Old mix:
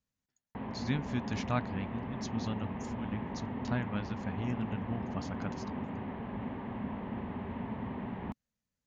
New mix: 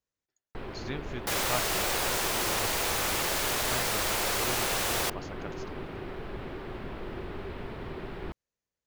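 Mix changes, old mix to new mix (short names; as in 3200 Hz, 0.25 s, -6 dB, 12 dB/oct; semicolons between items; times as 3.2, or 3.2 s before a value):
first sound: remove speaker cabinet 120–2600 Hz, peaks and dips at 150 Hz -9 dB, 340 Hz -5 dB, 920 Hz +6 dB, 1400 Hz -10 dB, 2400 Hz -5 dB; second sound: unmuted; master: add resonant low shelf 290 Hz -6 dB, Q 3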